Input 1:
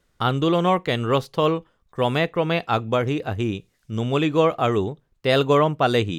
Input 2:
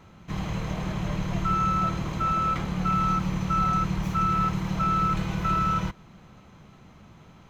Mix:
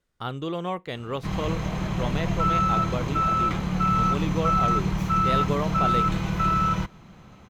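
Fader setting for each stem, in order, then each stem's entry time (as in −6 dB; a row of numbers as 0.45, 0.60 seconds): −10.5, +2.0 decibels; 0.00, 0.95 seconds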